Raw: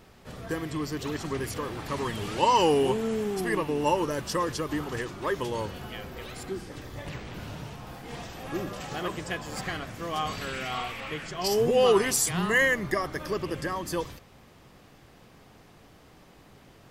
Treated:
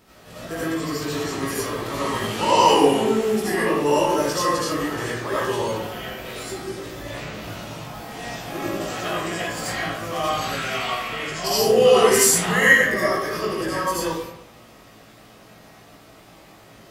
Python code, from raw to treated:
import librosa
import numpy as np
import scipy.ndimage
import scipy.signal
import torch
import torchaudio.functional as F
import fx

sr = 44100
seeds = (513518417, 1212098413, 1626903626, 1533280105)

y = fx.highpass(x, sr, hz=82.0, slope=6)
y = fx.high_shelf(y, sr, hz=5200.0, db=5.5)
y = fx.doubler(y, sr, ms=18.0, db=-4.0)
y = fx.rev_freeverb(y, sr, rt60_s=0.76, hf_ratio=0.65, predelay_ms=40, drr_db=-8.5)
y = y * 10.0 ** (-3.0 / 20.0)